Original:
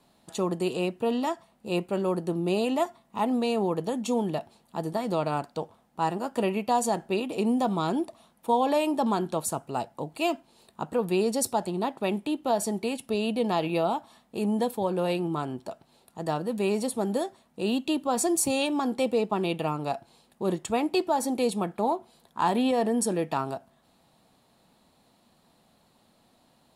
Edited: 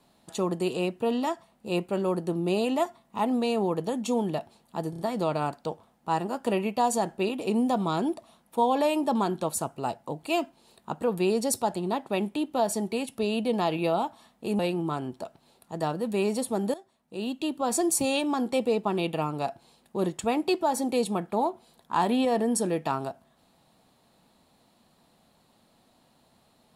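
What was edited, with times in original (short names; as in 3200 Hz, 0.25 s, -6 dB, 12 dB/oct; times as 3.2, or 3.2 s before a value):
4.9 stutter 0.03 s, 4 plays
14.5–15.05 cut
17.2–18.27 fade in, from -16.5 dB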